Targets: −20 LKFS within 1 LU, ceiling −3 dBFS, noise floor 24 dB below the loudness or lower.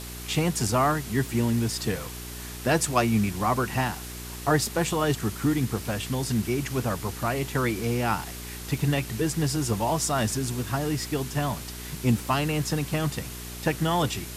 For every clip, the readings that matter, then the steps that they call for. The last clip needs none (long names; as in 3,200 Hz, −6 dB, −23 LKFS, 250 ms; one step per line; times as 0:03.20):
mains hum 60 Hz; hum harmonics up to 420 Hz; level of the hum −39 dBFS; background noise floor −38 dBFS; target noise floor −51 dBFS; integrated loudness −27.0 LKFS; sample peak −9.0 dBFS; target loudness −20.0 LKFS
→ hum removal 60 Hz, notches 7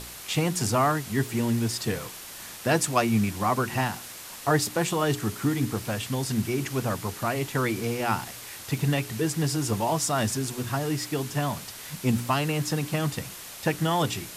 mains hum none found; background noise floor −42 dBFS; target noise floor −51 dBFS
→ broadband denoise 9 dB, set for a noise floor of −42 dBFS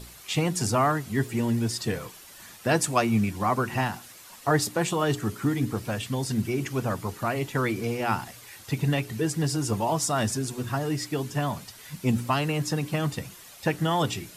background noise floor −48 dBFS; target noise floor −52 dBFS
→ broadband denoise 6 dB, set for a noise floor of −48 dBFS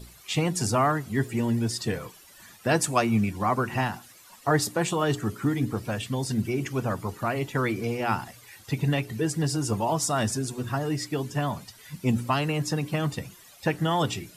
background noise floor −52 dBFS; integrated loudness −27.5 LKFS; sample peak −9.5 dBFS; target loudness −20.0 LKFS
→ level +7.5 dB
brickwall limiter −3 dBFS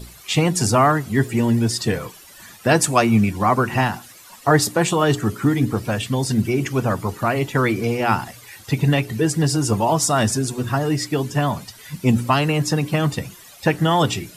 integrated loudness −20.0 LKFS; sample peak −3.0 dBFS; background noise floor −45 dBFS